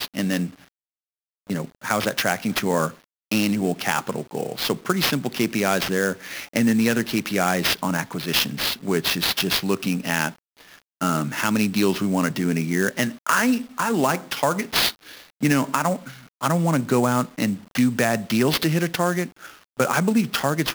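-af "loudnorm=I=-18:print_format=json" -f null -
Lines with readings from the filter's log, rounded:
"input_i" : "-22.5",
"input_tp" : "-3.6",
"input_lra" : "2.0",
"input_thresh" : "-32.8",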